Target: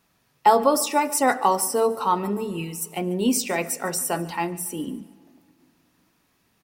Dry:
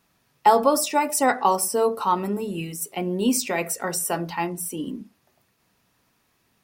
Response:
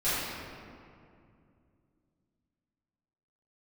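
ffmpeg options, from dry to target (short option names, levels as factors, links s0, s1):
-filter_complex "[0:a]aecho=1:1:145|290|435:0.1|0.039|0.0152,asplit=2[s0][s1];[1:a]atrim=start_sample=2205,adelay=61[s2];[s1][s2]afir=irnorm=-1:irlink=0,volume=0.02[s3];[s0][s3]amix=inputs=2:normalize=0"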